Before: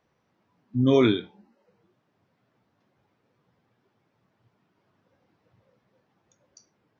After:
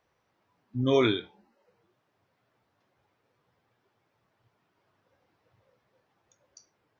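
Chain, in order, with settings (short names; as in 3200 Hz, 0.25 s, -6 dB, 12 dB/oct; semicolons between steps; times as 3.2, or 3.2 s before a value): bell 200 Hz -9 dB 1.5 oct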